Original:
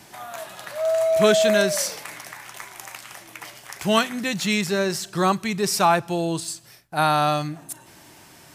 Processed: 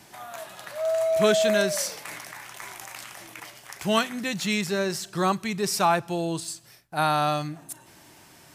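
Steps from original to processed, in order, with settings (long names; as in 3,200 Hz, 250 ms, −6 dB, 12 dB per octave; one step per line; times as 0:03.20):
0:02.05–0:03.40: level that may fall only so fast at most 27 dB per second
level −3.5 dB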